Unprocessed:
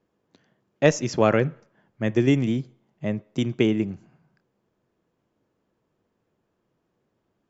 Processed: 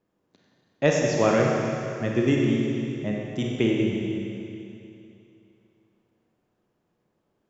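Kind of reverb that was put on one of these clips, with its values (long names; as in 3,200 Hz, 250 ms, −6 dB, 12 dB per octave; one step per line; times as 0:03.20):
four-comb reverb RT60 2.8 s, combs from 31 ms, DRR −1.5 dB
level −3.5 dB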